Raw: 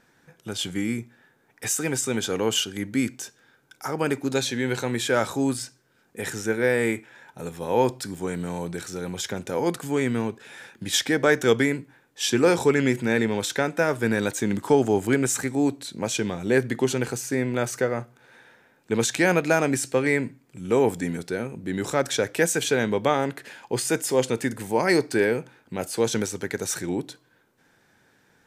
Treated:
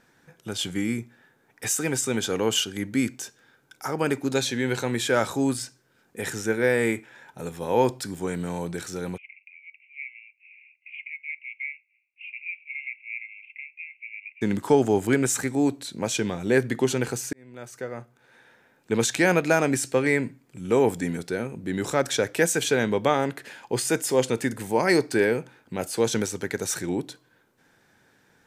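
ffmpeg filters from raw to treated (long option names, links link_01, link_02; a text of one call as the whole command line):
ffmpeg -i in.wav -filter_complex "[0:a]asplit=3[link_01][link_02][link_03];[link_01]afade=type=out:start_time=9.16:duration=0.02[link_04];[link_02]asuperpass=centerf=2400:order=12:qfactor=3.5,afade=type=in:start_time=9.16:duration=0.02,afade=type=out:start_time=14.41:duration=0.02[link_05];[link_03]afade=type=in:start_time=14.41:duration=0.02[link_06];[link_04][link_05][link_06]amix=inputs=3:normalize=0,asplit=2[link_07][link_08];[link_07]atrim=end=17.33,asetpts=PTS-STARTPTS,afade=type=out:start_time=17.326:duration=0.004:curve=hsin[link_09];[link_08]atrim=start=17.33,asetpts=PTS-STARTPTS,afade=type=in:duration=1.59[link_10];[link_09][link_10]concat=n=2:v=0:a=1" out.wav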